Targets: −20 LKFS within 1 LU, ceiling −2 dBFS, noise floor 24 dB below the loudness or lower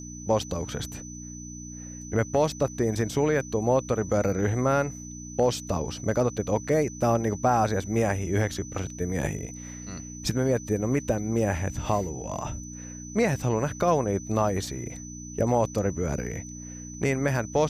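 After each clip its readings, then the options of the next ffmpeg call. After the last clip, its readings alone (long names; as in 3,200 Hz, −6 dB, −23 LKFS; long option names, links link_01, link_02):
mains hum 60 Hz; hum harmonics up to 300 Hz; level of the hum −38 dBFS; interfering tone 6,000 Hz; level of the tone −42 dBFS; integrated loudness −27.0 LKFS; sample peak −10.5 dBFS; target loudness −20.0 LKFS
→ -af "bandreject=frequency=60:width_type=h:width=4,bandreject=frequency=120:width_type=h:width=4,bandreject=frequency=180:width_type=h:width=4,bandreject=frequency=240:width_type=h:width=4,bandreject=frequency=300:width_type=h:width=4"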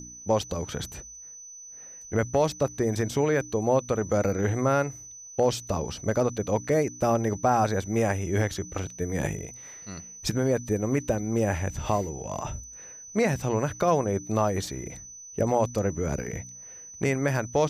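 mains hum none found; interfering tone 6,000 Hz; level of the tone −42 dBFS
→ -af "bandreject=frequency=6000:width=30"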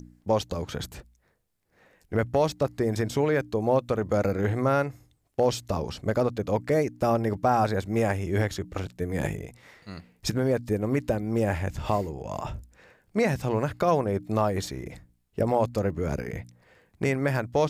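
interfering tone none found; integrated loudness −27.5 LKFS; sample peak −11.0 dBFS; target loudness −20.0 LKFS
→ -af "volume=7.5dB"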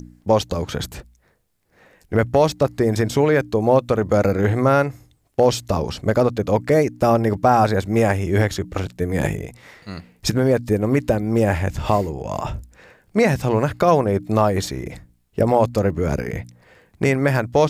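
integrated loudness −20.0 LKFS; sample peak −3.5 dBFS; background noise floor −61 dBFS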